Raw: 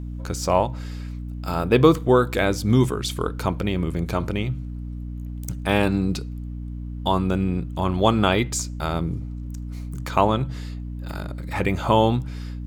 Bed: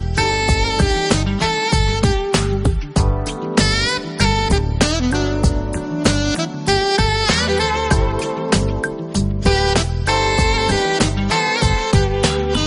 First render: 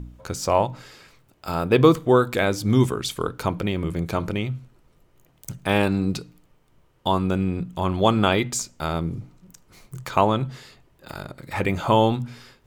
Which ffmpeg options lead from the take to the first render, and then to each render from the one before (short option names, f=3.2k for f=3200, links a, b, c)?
-af "bandreject=f=60:t=h:w=4,bandreject=f=120:t=h:w=4,bandreject=f=180:t=h:w=4,bandreject=f=240:t=h:w=4,bandreject=f=300:t=h:w=4"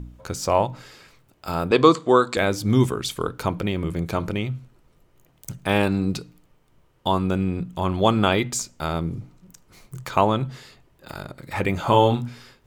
-filter_complex "[0:a]asettb=1/sr,asplit=3[a][b][c];[a]atrim=end=1.714[d];[b]atrim=start=1.71:end=2.37,asetpts=PTS-STARTPTS,afade=t=in:d=0.004:c=qsin,afade=t=out:st=0.656:d=0.004:c=qsin,highpass=200,equalizer=f=1.1k:t=q:w=4:g=6,equalizer=f=4.3k:t=q:w=4:g=10,equalizer=f=7.5k:t=q:w=4:g=8,lowpass=f=8.6k:w=0.5412,lowpass=f=8.6k:w=1.3066[e];[c]atrim=start=2.366[f];[d][e]acrossfade=d=0.004:c1=hsin:c2=qsin[g];[g][f]acrossfade=d=0.004:c1=qsin:c2=hsin,asettb=1/sr,asplit=3[h][i][j];[h]atrim=end=11.834[k];[i]atrim=start=11.83:end=12.29,asetpts=PTS-STARTPTS,afade=t=in:d=0.004:c=qsin,afade=t=out:st=0.456:d=0.004:c=qsin,asplit=2[l][m];[m]adelay=34,volume=-5.5dB[n];[l][n]amix=inputs=2:normalize=0,atrim=end_sample=20286[o];[j]atrim=start=12.286[p];[k][o]acrossfade=d=0.004:c1=hsin:c2=qsin[q];[q][p]acrossfade=d=0.004:c1=qsin:c2=hsin"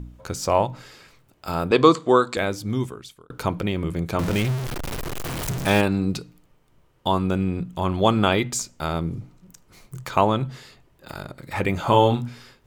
-filter_complex "[0:a]asettb=1/sr,asplit=3[a][b][c];[a]atrim=end=4.194[d];[b]atrim=start=4.19:end=5.81,asetpts=PTS-STARTPTS,afade=t=in:d=0.004:c=qsin,afade=t=out:st=1.616:d=0.004:c=qsin,aeval=exprs='val(0)+0.5*0.0708*sgn(val(0))':c=same[e];[c]atrim=start=5.806[f];[d][e]acrossfade=d=0.004:c1=hsin:c2=qsin[g];[g][f]acrossfade=d=0.004:c1=qsin:c2=hsin,asplit=2[h][i];[h]atrim=end=3.3,asetpts=PTS-STARTPTS,afade=t=out:st=2.1:d=1.2[j];[i]atrim=start=3.3,asetpts=PTS-STARTPTS,afade=t=in:d=0.004:c=hsin[k];[j][k]concat=n=2:v=0:a=1"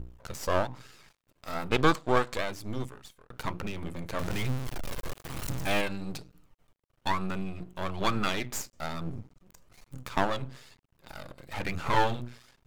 -af "flanger=delay=0.7:depth=1.2:regen=47:speed=1.1:shape=sinusoidal,aeval=exprs='max(val(0),0)':c=same"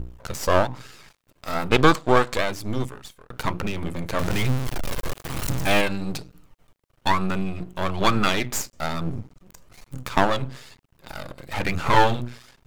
-af "volume=8dB,alimiter=limit=-2dB:level=0:latency=1"